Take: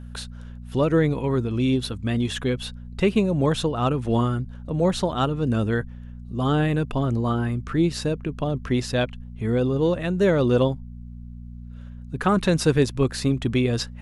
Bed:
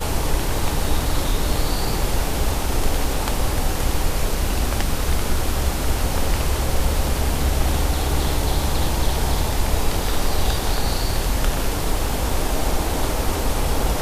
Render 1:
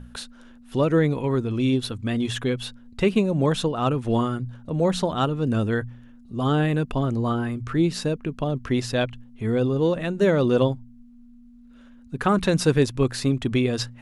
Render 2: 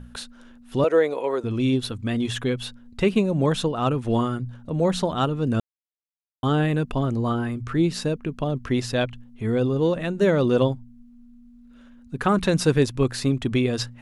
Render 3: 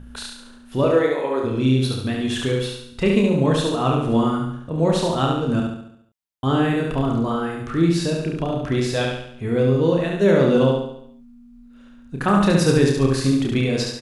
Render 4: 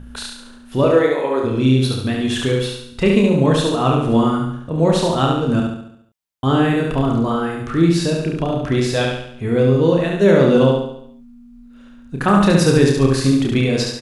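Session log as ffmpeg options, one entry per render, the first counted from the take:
-af "bandreject=f=60:t=h:w=4,bandreject=f=120:t=h:w=4,bandreject=f=180:t=h:w=4"
-filter_complex "[0:a]asettb=1/sr,asplit=3[s0][s1][s2];[s0]atrim=end=0.844[s3];[s1]atrim=start=0.84:end=1.44,asetpts=PTS-STARTPTS,afade=t=in:d=0.004:c=qsin,afade=t=out:st=0.596:d=0.004:c=qsin,highpass=f=530:t=q:w=2[s4];[s2]atrim=start=1.436[s5];[s3][s4]acrossfade=d=0.004:c1=hsin:c2=qsin[s6];[s6][s5]acrossfade=d=0.004:c1=qsin:c2=hsin,asplit=3[s7][s8][s9];[s7]atrim=end=5.6,asetpts=PTS-STARTPTS,afade=t=out:st=5.596:d=0.004:c=hsin[s10];[s8]atrim=start=5.6:end=6.43,asetpts=PTS-STARTPTS,volume=0[s11];[s9]atrim=start=6.43,asetpts=PTS-STARTPTS,afade=t=in:d=0.004:c=hsin[s12];[s10][s11][s12]concat=n=3:v=0:a=1"
-filter_complex "[0:a]asplit=2[s0][s1];[s1]adelay=30,volume=0.562[s2];[s0][s2]amix=inputs=2:normalize=0,asplit=2[s3][s4];[s4]aecho=0:1:70|140|210|280|350|420|490:0.708|0.354|0.177|0.0885|0.0442|0.0221|0.0111[s5];[s3][s5]amix=inputs=2:normalize=0"
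-af "volume=1.5,alimiter=limit=0.794:level=0:latency=1"

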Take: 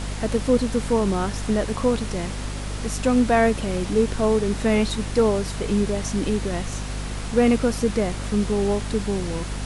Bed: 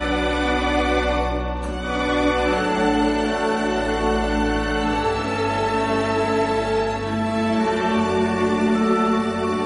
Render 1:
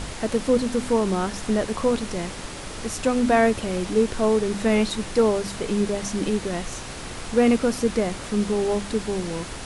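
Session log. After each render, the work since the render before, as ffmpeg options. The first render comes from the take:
-af "bandreject=f=50:t=h:w=4,bandreject=f=100:t=h:w=4,bandreject=f=150:t=h:w=4,bandreject=f=200:t=h:w=4,bandreject=f=250:t=h:w=4"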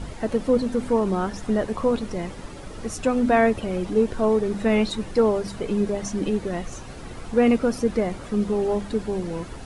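-af "afftdn=nr=11:nf=-35"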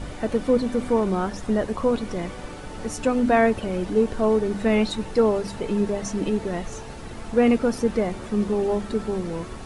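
-filter_complex "[1:a]volume=0.0841[s0];[0:a][s0]amix=inputs=2:normalize=0"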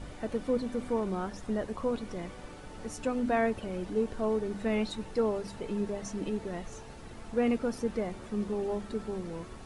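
-af "volume=0.335"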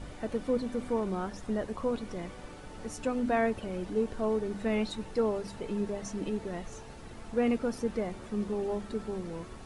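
-af anull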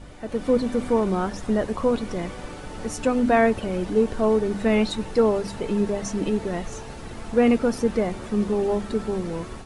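-af "dynaudnorm=f=240:g=3:m=2.99"

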